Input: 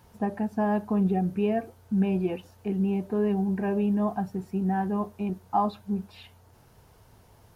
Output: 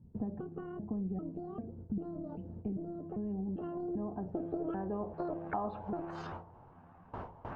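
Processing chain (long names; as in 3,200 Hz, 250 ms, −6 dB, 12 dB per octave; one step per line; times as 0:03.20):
pitch shifter gated in a rhythm +9.5 semitones, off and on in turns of 395 ms
noise gate with hold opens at −45 dBFS
parametric band 2,900 Hz +4.5 dB 0.6 octaves
hum removal 169.5 Hz, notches 5
downward compressor 5 to 1, threshold −40 dBFS, peak gain reduction 18 dB
low-pass filter sweep 210 Hz → 960 Hz, 0:03.14–0:06.30
every bin compressed towards the loudest bin 2 to 1
level +1.5 dB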